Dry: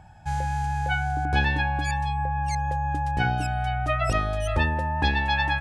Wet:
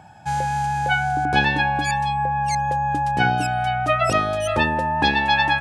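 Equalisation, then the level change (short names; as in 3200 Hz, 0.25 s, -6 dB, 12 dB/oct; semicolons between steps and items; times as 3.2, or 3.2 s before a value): HPF 160 Hz 12 dB/oct; bell 1900 Hz -3 dB 0.31 oct; +7.0 dB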